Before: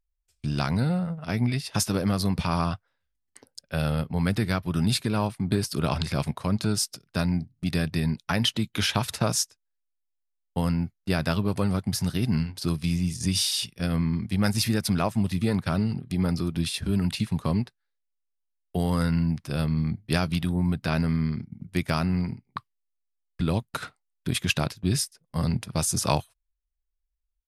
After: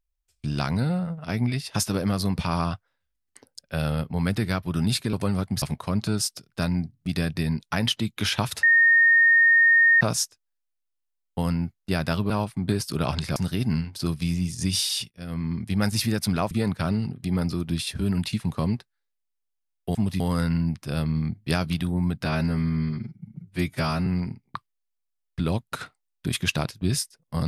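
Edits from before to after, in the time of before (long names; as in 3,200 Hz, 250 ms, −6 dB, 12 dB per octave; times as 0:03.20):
0:05.13–0:06.19: swap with 0:11.49–0:11.98
0:09.20: insert tone 1,840 Hz −13.5 dBFS 1.38 s
0:13.72–0:14.24: fade in, from −21 dB
0:15.13–0:15.38: move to 0:18.82
0:20.87–0:22.08: time-stretch 1.5×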